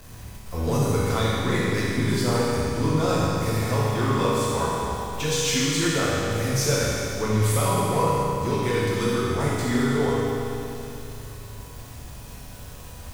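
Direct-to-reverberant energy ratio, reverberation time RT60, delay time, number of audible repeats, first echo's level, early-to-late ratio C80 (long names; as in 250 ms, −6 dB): −8.5 dB, 2.9 s, no echo audible, no echo audible, no echo audible, −2.0 dB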